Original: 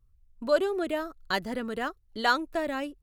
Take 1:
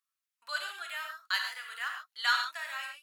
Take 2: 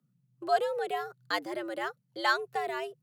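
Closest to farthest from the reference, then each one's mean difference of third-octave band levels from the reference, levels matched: 2, 1; 7.0, 13.5 dB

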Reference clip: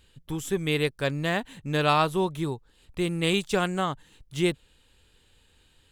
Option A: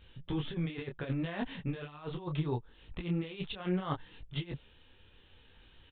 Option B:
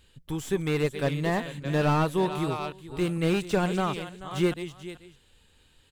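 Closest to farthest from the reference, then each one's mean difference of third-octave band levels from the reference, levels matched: B, A; 5.5, 11.5 dB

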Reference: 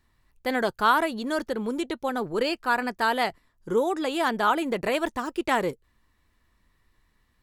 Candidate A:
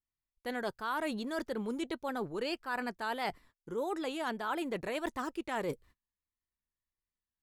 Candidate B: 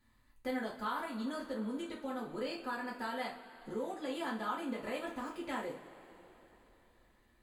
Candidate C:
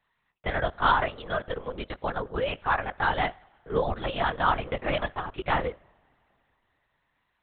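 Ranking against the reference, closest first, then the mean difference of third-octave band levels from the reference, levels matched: A, B, C; 3.0, 5.5, 12.0 dB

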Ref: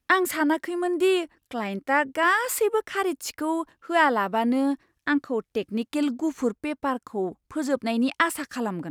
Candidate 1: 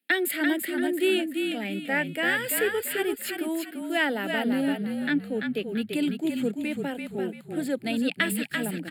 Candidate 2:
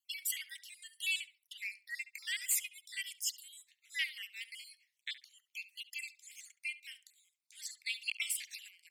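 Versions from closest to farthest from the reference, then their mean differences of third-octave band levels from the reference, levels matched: 1, 2; 8.5, 18.5 dB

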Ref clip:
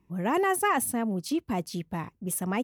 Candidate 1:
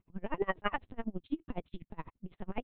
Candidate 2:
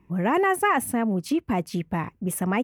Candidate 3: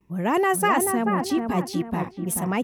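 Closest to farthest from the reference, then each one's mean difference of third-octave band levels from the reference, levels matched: 2, 3, 1; 2.5, 4.5, 10.0 dB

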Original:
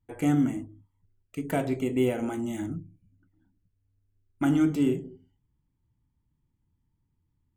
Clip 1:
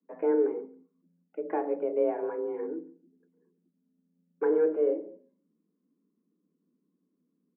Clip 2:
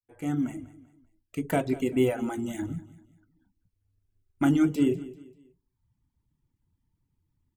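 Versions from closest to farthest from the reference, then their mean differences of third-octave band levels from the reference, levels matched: 2, 1; 3.5, 12.0 dB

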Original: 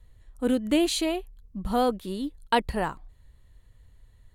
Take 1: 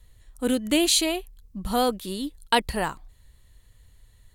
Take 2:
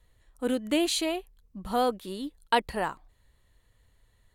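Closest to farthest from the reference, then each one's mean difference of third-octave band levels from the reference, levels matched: 2, 1; 2.0, 3.0 dB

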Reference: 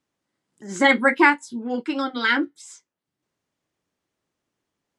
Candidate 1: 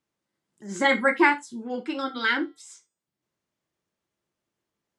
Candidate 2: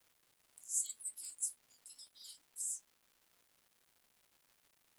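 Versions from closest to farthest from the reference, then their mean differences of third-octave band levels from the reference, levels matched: 1, 2; 1.5, 16.5 dB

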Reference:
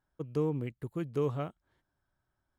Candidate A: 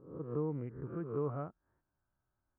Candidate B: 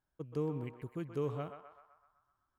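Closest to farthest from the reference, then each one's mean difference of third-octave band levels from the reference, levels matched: B, A; 2.0, 6.0 dB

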